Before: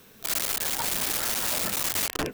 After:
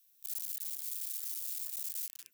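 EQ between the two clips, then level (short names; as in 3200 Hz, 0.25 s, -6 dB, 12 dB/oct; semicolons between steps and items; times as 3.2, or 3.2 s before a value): HPF 58 Hz; differentiator; passive tone stack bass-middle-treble 6-0-2; 0.0 dB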